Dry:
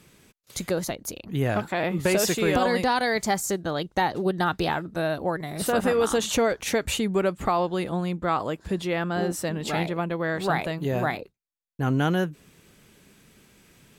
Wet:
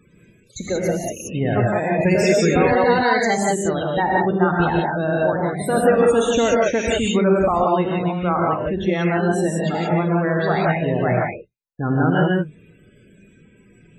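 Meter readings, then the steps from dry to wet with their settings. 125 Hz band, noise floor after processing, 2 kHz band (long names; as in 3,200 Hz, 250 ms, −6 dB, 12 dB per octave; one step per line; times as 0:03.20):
+7.5 dB, −53 dBFS, +5.5 dB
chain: spectral peaks only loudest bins 32
reverb whose tail is shaped and stops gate 200 ms rising, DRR −3 dB
level +2.5 dB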